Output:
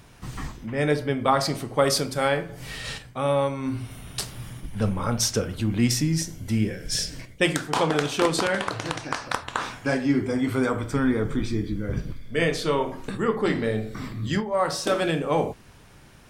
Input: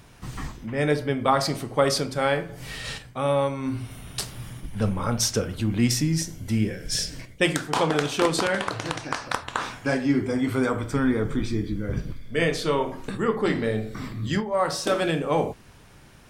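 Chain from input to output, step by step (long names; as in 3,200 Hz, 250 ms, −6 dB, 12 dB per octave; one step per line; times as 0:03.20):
0:01.78–0:02.27: high-shelf EQ 12,000 Hz → 6,400 Hz +9 dB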